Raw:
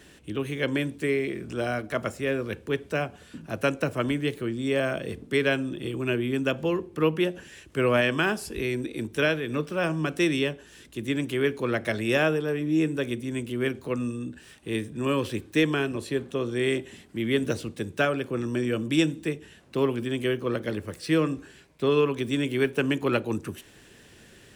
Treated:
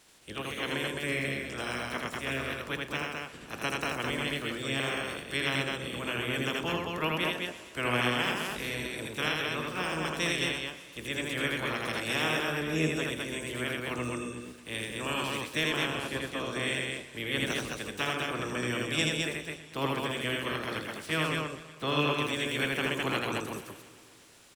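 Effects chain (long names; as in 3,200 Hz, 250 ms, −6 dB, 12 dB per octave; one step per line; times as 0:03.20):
ceiling on every frequency bin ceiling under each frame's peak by 21 dB
parametric band 280 Hz +2 dB 1.6 octaves
loudspeakers that aren't time-aligned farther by 28 metres −2 dB, 73 metres −3 dB
feedback echo with a swinging delay time 120 ms, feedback 71%, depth 55 cents, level −17 dB
level −9 dB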